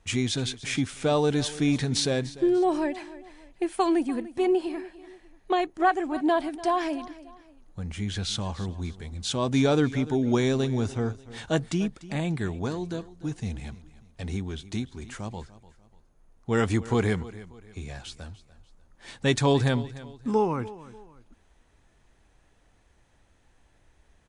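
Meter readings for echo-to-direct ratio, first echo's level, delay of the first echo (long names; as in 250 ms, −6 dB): −17.0 dB, −17.5 dB, 295 ms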